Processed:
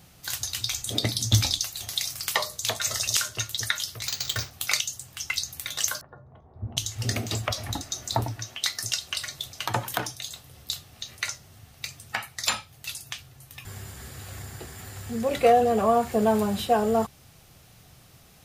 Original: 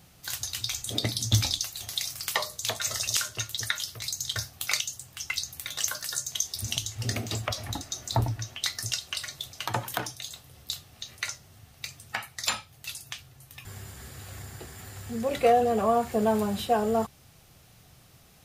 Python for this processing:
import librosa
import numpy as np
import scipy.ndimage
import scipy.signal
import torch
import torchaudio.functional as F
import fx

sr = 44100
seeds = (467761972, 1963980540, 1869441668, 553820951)

y = fx.resample_bad(x, sr, factor=4, down='none', up='hold', at=(4.07, 4.51))
y = fx.lowpass(y, sr, hz=1000.0, slope=24, at=(6.01, 6.77))
y = fx.low_shelf(y, sr, hz=120.0, db=-11.0, at=(8.14, 8.99))
y = y * 10.0 ** (2.5 / 20.0)